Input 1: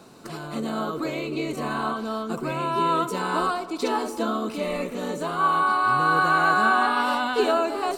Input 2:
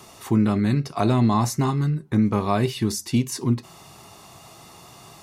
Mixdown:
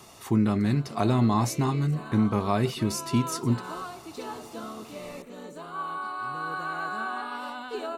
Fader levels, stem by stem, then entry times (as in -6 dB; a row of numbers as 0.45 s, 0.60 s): -12.5 dB, -3.5 dB; 0.35 s, 0.00 s